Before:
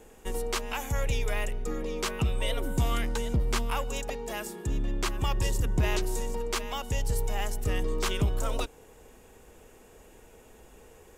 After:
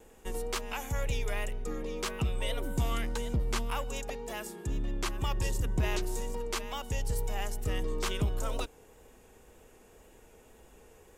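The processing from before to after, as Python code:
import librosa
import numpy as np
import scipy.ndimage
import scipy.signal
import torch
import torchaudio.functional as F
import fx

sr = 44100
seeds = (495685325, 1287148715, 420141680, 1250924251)

y = fx.wow_flutter(x, sr, seeds[0], rate_hz=2.1, depth_cents=24.0)
y = F.gain(torch.from_numpy(y), -3.5).numpy()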